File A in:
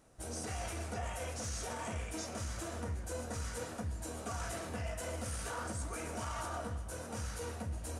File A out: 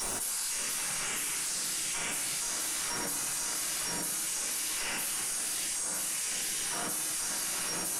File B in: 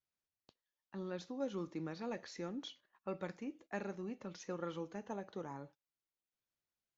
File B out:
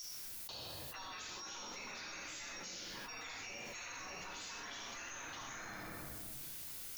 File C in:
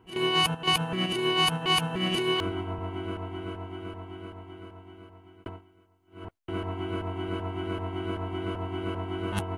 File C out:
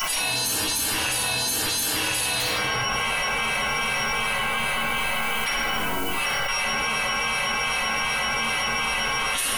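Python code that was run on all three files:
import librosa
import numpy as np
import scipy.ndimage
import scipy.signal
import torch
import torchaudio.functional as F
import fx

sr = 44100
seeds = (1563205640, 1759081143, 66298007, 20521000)

y = x + 10.0 ** (-55.0 / 20.0) * np.sin(2.0 * np.pi * 5600.0 * np.arange(len(x)) / sr)
y = fx.spec_gate(y, sr, threshold_db=-20, keep='weak')
y = F.preemphasis(torch.from_numpy(y), 0.8).numpy()
y = fx.room_shoebox(y, sr, seeds[0], volume_m3=600.0, walls='mixed', distance_m=9.6)
y = fx.env_flatten(y, sr, amount_pct=100)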